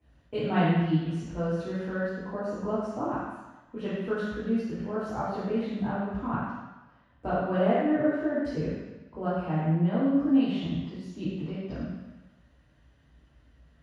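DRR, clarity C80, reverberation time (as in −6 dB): −11.0 dB, 0.5 dB, 1.1 s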